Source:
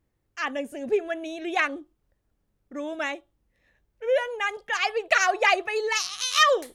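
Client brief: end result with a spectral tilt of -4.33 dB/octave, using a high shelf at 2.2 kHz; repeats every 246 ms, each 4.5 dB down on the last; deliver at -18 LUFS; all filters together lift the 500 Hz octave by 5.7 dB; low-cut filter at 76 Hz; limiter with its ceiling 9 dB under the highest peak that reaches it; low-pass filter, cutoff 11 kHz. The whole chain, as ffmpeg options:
-af "highpass=76,lowpass=11000,equalizer=f=500:t=o:g=6.5,highshelf=f=2200:g=3.5,alimiter=limit=0.237:level=0:latency=1,aecho=1:1:246|492|738|984|1230|1476|1722|1968|2214:0.596|0.357|0.214|0.129|0.0772|0.0463|0.0278|0.0167|0.01,volume=1.88"

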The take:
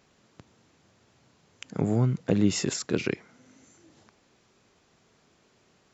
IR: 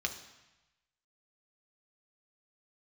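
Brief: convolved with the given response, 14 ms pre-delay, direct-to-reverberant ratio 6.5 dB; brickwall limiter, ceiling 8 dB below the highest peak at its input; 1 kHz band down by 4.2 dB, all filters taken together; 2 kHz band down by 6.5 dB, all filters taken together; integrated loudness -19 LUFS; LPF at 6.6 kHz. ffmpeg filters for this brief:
-filter_complex "[0:a]lowpass=6600,equalizer=f=1000:t=o:g=-4.5,equalizer=f=2000:t=o:g=-7.5,alimiter=limit=0.126:level=0:latency=1,asplit=2[s0][s1];[1:a]atrim=start_sample=2205,adelay=14[s2];[s1][s2]afir=irnorm=-1:irlink=0,volume=0.316[s3];[s0][s3]amix=inputs=2:normalize=0,volume=3.35"

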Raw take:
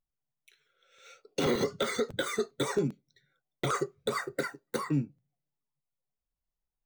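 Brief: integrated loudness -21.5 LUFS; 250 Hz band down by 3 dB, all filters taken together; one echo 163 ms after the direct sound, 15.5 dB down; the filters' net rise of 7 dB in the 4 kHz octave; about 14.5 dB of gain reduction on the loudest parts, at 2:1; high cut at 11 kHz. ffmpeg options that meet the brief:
-af "lowpass=11000,equalizer=f=250:t=o:g=-4,equalizer=f=4000:t=o:g=8,acompressor=threshold=0.00224:ratio=2,aecho=1:1:163:0.168,volume=16.8"

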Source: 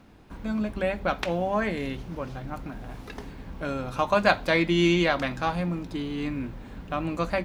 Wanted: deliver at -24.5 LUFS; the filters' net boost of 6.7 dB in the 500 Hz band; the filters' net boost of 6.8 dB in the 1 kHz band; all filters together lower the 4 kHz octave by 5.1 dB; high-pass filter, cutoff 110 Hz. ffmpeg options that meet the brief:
-af "highpass=110,equalizer=f=500:t=o:g=6.5,equalizer=f=1000:t=o:g=7,equalizer=f=4000:t=o:g=-7.5,volume=0.794"

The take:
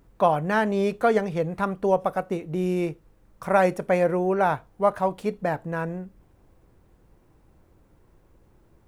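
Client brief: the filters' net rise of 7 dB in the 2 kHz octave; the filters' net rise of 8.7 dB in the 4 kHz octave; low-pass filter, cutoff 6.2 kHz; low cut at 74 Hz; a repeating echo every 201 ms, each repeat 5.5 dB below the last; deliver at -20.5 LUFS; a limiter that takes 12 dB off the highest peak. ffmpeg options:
-af "highpass=74,lowpass=6200,equalizer=f=2000:t=o:g=7.5,equalizer=f=4000:t=o:g=9,alimiter=limit=0.158:level=0:latency=1,aecho=1:1:201|402|603|804|1005|1206|1407:0.531|0.281|0.149|0.079|0.0419|0.0222|0.0118,volume=2"

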